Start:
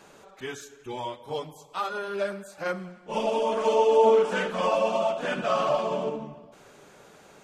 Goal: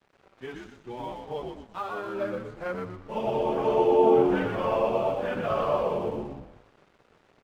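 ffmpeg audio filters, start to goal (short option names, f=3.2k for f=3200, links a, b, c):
-filter_complex "[0:a]tiltshelf=f=1.3k:g=3,acrusher=bits=9:mix=0:aa=0.000001,lowpass=3.4k,asplit=2[a][b];[b]asplit=5[c][d][e][f][g];[c]adelay=120,afreqshift=-85,volume=-4dB[h];[d]adelay=240,afreqshift=-170,volume=-11.7dB[i];[e]adelay=360,afreqshift=-255,volume=-19.5dB[j];[f]adelay=480,afreqshift=-340,volume=-27.2dB[k];[g]adelay=600,afreqshift=-425,volume=-35dB[l];[h][i][j][k][l]amix=inputs=5:normalize=0[m];[a][m]amix=inputs=2:normalize=0,aeval=exprs='sgn(val(0))*max(abs(val(0))-0.00355,0)':c=same,volume=-4dB"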